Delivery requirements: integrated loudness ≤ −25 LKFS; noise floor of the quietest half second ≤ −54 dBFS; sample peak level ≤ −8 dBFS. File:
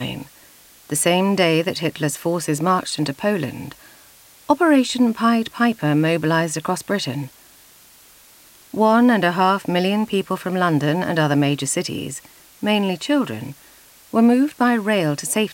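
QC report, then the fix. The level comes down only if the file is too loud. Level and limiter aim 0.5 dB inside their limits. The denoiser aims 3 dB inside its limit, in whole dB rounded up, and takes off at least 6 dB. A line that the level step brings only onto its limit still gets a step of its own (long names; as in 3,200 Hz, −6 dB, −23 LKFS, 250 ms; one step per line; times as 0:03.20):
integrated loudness −19.5 LKFS: out of spec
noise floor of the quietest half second −49 dBFS: out of spec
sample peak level −4.0 dBFS: out of spec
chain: level −6 dB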